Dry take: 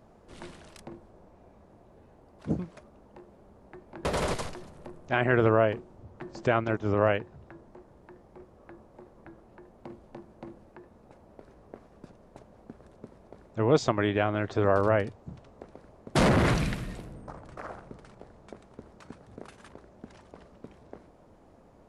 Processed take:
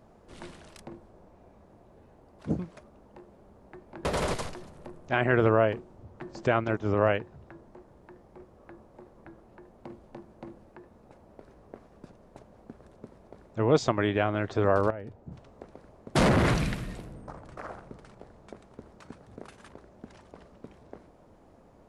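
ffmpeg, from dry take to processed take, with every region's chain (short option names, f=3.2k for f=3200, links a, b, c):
-filter_complex "[0:a]asettb=1/sr,asplit=3[a][b][c];[a]atrim=end=14.904[d];[b]atrim=start=14.9:end=15.32,asetpts=PTS-STARTPTS,afade=t=in:d=0.004:c=qsin,afade=t=out:st=0.416:d=0.004:c=qsin,asuperstop=centerf=1100:order=4:qfactor=7.6,highshelf=f=2k:g=-11.5,acompressor=threshold=-35dB:ratio=5:attack=3.2:release=140:knee=1:detection=peak[e];[c]atrim=start=15.316[f];[d][e]acrossfade=d=0.004:c1=hsin:c2=qsin[g];[g][f]acrossfade=d=0.004:c1=qsin:c2=hsin"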